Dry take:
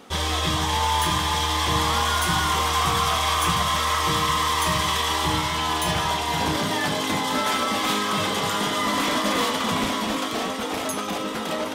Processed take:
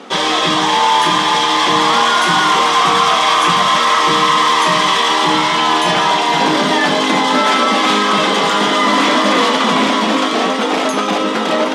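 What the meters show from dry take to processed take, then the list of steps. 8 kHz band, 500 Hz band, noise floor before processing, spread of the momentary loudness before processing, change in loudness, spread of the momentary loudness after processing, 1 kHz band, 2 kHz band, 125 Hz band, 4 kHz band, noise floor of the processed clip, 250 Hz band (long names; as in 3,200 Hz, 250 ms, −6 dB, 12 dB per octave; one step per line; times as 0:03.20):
+4.5 dB, +11.5 dB, −29 dBFS, 5 LU, +10.0 dB, 4 LU, +11.0 dB, +11.0 dB, −0.5 dB, +9.5 dB, −17 dBFS, +10.5 dB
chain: high-pass filter 200 Hz 24 dB per octave
in parallel at 0 dB: brickwall limiter −18 dBFS, peak gain reduction 7 dB
on the sum: high-frequency loss of the air 81 metres
level +7 dB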